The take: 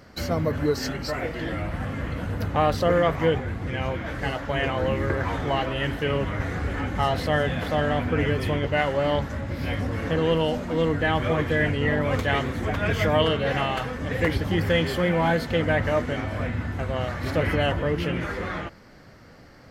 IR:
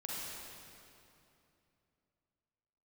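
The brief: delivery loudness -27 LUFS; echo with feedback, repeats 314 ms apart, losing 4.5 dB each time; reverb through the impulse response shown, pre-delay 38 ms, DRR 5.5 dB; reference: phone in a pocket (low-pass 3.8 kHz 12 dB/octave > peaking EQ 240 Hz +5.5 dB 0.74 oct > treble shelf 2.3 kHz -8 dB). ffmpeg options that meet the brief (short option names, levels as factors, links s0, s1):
-filter_complex "[0:a]aecho=1:1:314|628|942|1256|1570|1884|2198|2512|2826:0.596|0.357|0.214|0.129|0.0772|0.0463|0.0278|0.0167|0.01,asplit=2[s0][s1];[1:a]atrim=start_sample=2205,adelay=38[s2];[s1][s2]afir=irnorm=-1:irlink=0,volume=0.447[s3];[s0][s3]amix=inputs=2:normalize=0,lowpass=3800,equalizer=f=240:t=o:w=0.74:g=5.5,highshelf=f=2300:g=-8,volume=0.562"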